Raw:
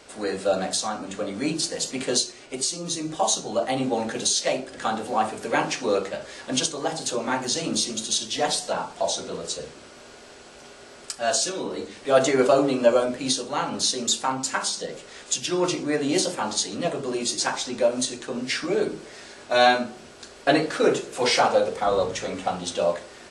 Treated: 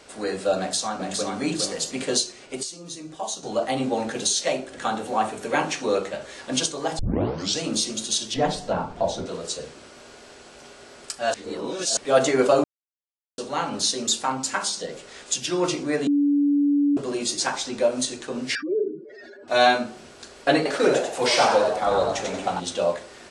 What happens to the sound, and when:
0.58–1.32 echo throw 0.41 s, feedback 25%, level -4 dB
2.63–3.43 gain -8 dB
4.27–6.38 notch 4900 Hz
6.99 tape start 0.61 s
8.34–9.26 RIAA curve playback
11.34–11.97 reverse
12.64–13.38 mute
16.07–16.97 bleep 287 Hz -16.5 dBFS
18.55–19.48 spectral contrast raised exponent 3.1
20.56–22.6 frequency-shifting echo 92 ms, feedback 34%, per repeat +110 Hz, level -5 dB

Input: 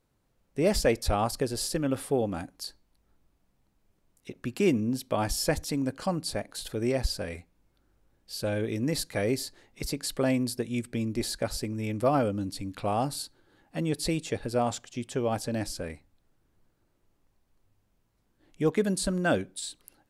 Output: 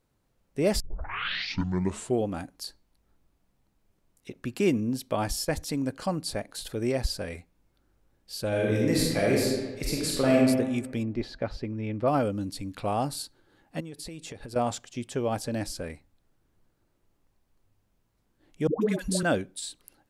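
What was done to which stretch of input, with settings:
0.8 tape start 1.48 s
5.06–5.87 dip -12.5 dB, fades 0.39 s logarithmic
8.48–10.4 reverb throw, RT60 1.3 s, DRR -3.5 dB
11.03–12.08 air absorption 250 m
13.8–14.56 compressor 16:1, threshold -36 dBFS
18.67–19.23 dispersion highs, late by 0.145 s, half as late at 590 Hz

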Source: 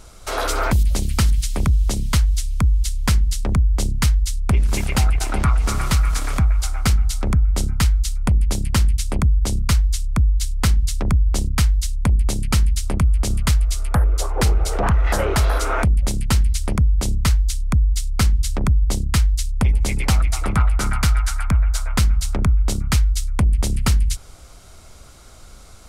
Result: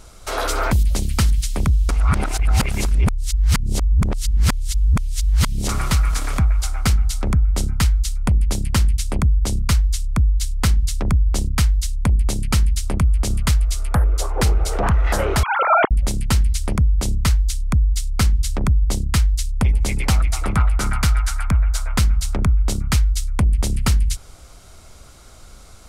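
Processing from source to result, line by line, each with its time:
1.89–5.69 reverse
15.43–15.91 sine-wave speech

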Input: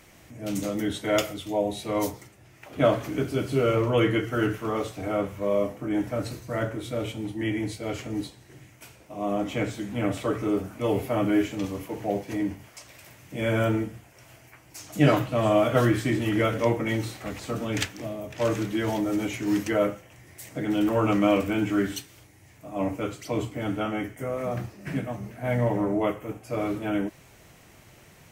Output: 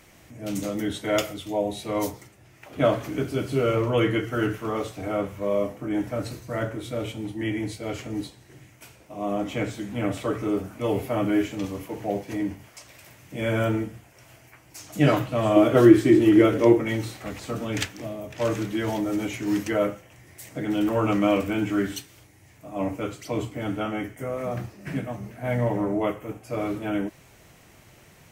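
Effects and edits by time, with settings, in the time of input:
15.56–16.8 bell 350 Hz +13.5 dB 0.58 oct

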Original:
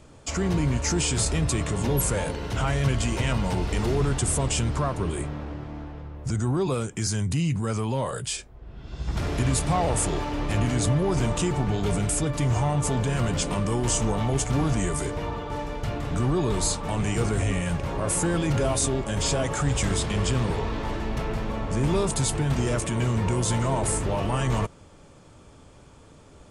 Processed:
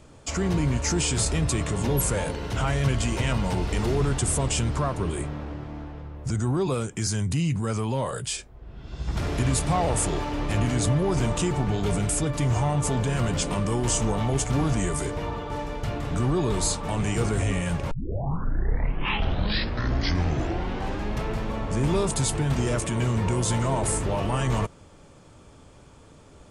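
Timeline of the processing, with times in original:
17.91 tape start 3.34 s

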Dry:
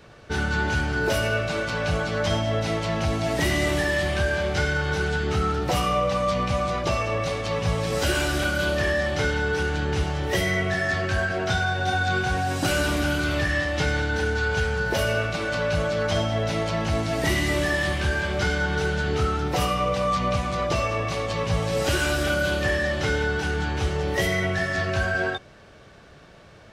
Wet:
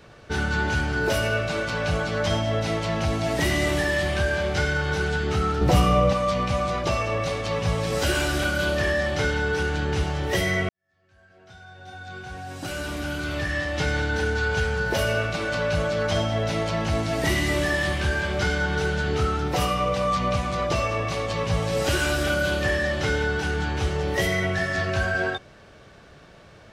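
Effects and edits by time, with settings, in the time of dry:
5.61–6.13 low shelf 410 Hz +9.5 dB
10.69–14.03 fade in quadratic

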